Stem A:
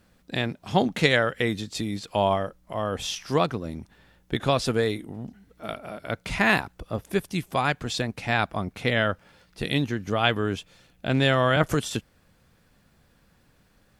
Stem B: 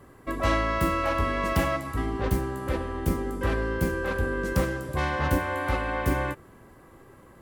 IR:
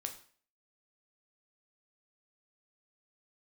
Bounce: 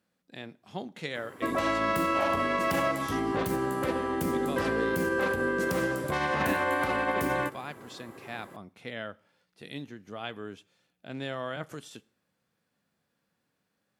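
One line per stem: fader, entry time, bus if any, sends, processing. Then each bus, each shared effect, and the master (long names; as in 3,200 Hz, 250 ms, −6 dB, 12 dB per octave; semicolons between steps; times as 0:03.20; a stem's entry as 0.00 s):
−14.5 dB, 0.00 s, send −10.5 dB, harmonic and percussive parts rebalanced percussive −4 dB
+2.5 dB, 1.15 s, send −12 dB, brickwall limiter −21.5 dBFS, peak gain reduction 10.5 dB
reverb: on, RT60 0.45 s, pre-delay 5 ms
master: high-pass filter 170 Hz 12 dB per octave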